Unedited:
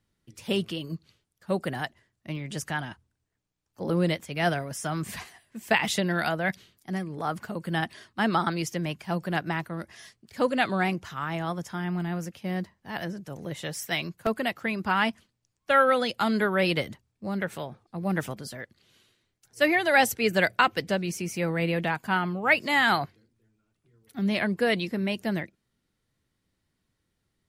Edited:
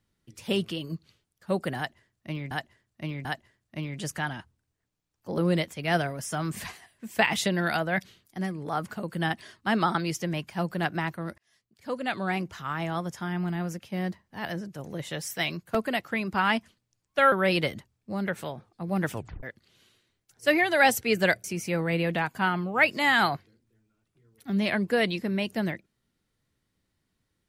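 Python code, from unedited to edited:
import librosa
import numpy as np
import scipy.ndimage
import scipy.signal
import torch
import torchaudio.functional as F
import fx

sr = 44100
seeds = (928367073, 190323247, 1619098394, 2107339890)

y = fx.edit(x, sr, fx.repeat(start_s=1.77, length_s=0.74, count=3),
    fx.fade_in_span(start_s=9.9, length_s=1.31),
    fx.cut(start_s=15.84, length_s=0.62),
    fx.tape_stop(start_s=18.27, length_s=0.3),
    fx.cut(start_s=20.58, length_s=0.55), tone=tone)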